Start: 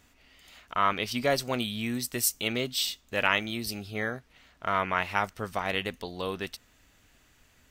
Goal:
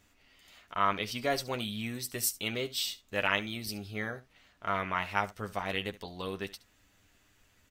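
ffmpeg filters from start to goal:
ffmpeg -i in.wav -af "aecho=1:1:10|71:0.473|0.133,volume=-5dB" out.wav

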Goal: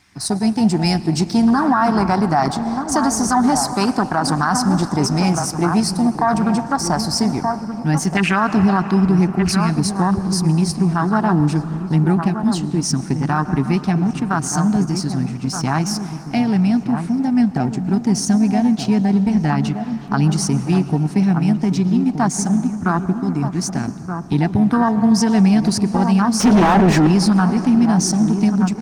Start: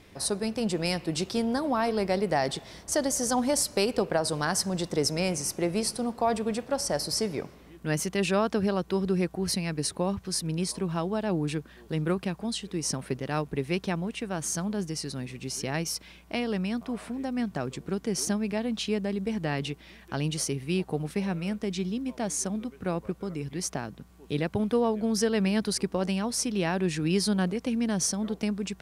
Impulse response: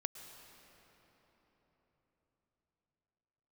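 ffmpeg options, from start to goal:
-filter_complex "[0:a]highpass=44,afwtdn=0.0316,firequalizer=gain_entry='entry(280,0);entry(520,-20);entry(730,3);entry(1500,9);entry(5300,0);entry(12000,-19)':delay=0.05:min_phase=1,aexciter=amount=5.5:drive=6.7:freq=4800,asplit=2[link_01][link_02];[link_02]aeval=exprs='sgn(val(0))*max(abs(val(0))-0.00794,0)':channel_layout=same,volume=-10dB[link_03];[link_01][link_03]amix=inputs=2:normalize=0,asplit=2[link_04][link_05];[link_05]adelay=1224,volume=-9dB,highshelf=frequency=4000:gain=-27.6[link_06];[link_04][link_06]amix=inputs=2:normalize=0,asettb=1/sr,asplit=3[link_07][link_08][link_09];[link_07]atrim=end=26.404[link_10];[link_08]atrim=start=26.4:end=27.07,asetpts=PTS-STARTPTS,afade=type=in:duration=0.004:curve=qsin,afade=type=out:start_time=0.666:duration=0.004:curve=qsin,asplit=2[link_11][link_12];[link_12]highpass=frequency=720:poles=1,volume=32dB,asoftclip=type=tanh:threshold=-13dB[link_13];[link_11][link_13]amix=inputs=2:normalize=0,lowpass=frequency=1200:poles=1,volume=-6dB[link_14];[link_09]atrim=start=27.066[link_15];[link_10][link_14]acrossfade=duration=0.004:curve1=hsin:curve2=qsin[link_16];[link_16][link_15]acrossfade=duration=0.004:curve1=qsin:curve2=hsin,asplit=2[link_17][link_18];[1:a]atrim=start_sample=2205[link_19];[link_18][link_19]afir=irnorm=-1:irlink=0,volume=-1dB[link_20];[link_17][link_20]amix=inputs=2:normalize=0,alimiter=level_in=14dB:limit=-1dB:release=50:level=0:latency=1,volume=-5.5dB" -ar 48000 -c:a libopus -b:a 24k

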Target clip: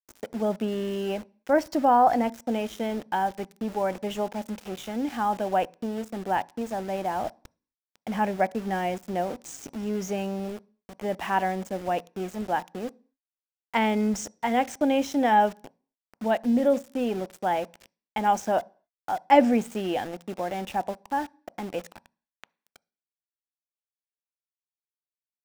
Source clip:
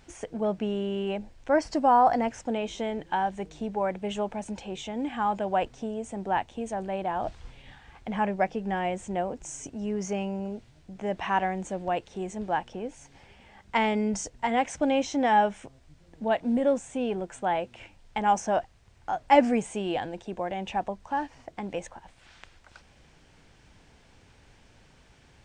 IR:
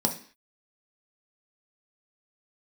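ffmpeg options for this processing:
-filter_complex "[0:a]highpass=frequency=43:poles=1,aeval=exprs='val(0)*gte(abs(val(0)),0.0119)':channel_layout=same,asplit=2[link_01][link_02];[1:a]atrim=start_sample=2205,lowpass=6600[link_03];[link_02][link_03]afir=irnorm=-1:irlink=0,volume=-25dB[link_04];[link_01][link_04]amix=inputs=2:normalize=0"

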